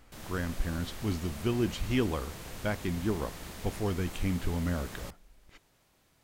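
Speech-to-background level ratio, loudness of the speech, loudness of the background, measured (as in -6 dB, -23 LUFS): 10.5 dB, -33.5 LUFS, -44.0 LUFS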